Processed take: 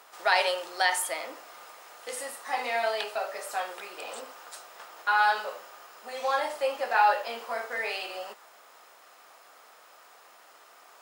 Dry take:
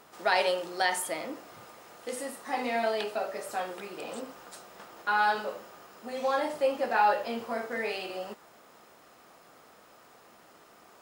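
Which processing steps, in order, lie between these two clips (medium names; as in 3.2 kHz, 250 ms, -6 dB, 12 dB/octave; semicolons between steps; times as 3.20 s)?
high-pass 670 Hz 12 dB/octave; endings held to a fixed fall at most 320 dB/s; trim +3.5 dB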